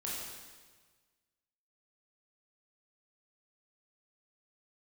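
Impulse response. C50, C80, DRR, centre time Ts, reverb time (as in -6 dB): -1.0 dB, 1.5 dB, -6.0 dB, 94 ms, 1.5 s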